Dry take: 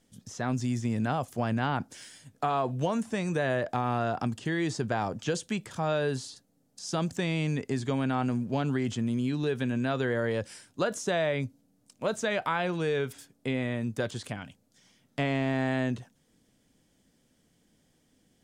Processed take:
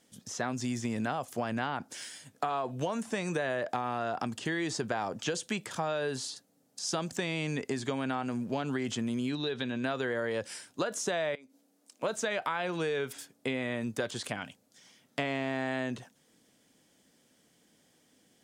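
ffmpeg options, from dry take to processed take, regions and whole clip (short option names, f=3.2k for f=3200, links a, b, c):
-filter_complex "[0:a]asettb=1/sr,asplit=3[a][b][c];[a]atrim=end=9.354[d];[b]atrim=start=9.35:end=9.84,asetpts=PTS-STARTPTS,afade=t=in:d=0.004:c=qsin,afade=t=out:st=0.486:d=0.004:c=qsin,equalizer=f=3.8k:w=5.8:g=13,acompressor=threshold=-34dB:ratio=1.5:attack=3.2:release=140:knee=1:detection=peak,lowpass=4.9k[e];[c]atrim=start=9.836[f];[d][e]acrossfade=d=0.004:c1=hsin:c2=qsin[g];[g][f]acrossfade=d=0.004:c1=qsin:c2=hsin,asettb=1/sr,asplit=3[h][i][j];[h]atrim=end=11.354[k];[i]atrim=start=11.35:end=12.03,asetpts=PTS-STARTPTS,afade=t=in:d=0.004:c=qsin,afade=t=out:st=0.676:d=0.004:c=qsin,highpass=f=240:w=0.5412,highpass=f=240:w=1.3066,acompressor=threshold=-53dB:ratio=4:attack=3.2:release=140:knee=1:detection=peak[l];[j]atrim=start=12.026[m];[k][l]acrossfade=d=0.004:c1=hsin:c2=qsin[n];[n][m]acrossfade=d=0.004:c1=qsin:c2=hsin,highpass=f=350:p=1,acompressor=threshold=-33dB:ratio=6,volume=4.5dB"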